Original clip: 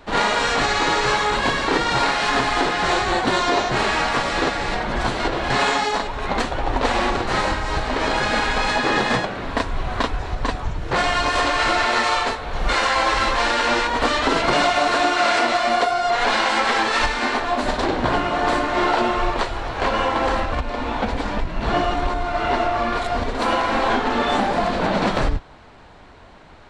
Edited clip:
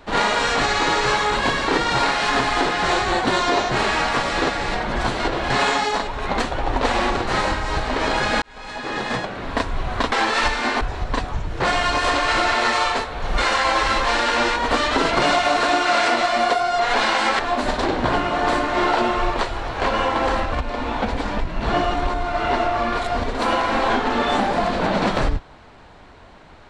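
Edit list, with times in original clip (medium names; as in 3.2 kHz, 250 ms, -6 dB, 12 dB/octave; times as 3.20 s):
8.42–9.59 s: fade in
16.70–17.39 s: move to 10.12 s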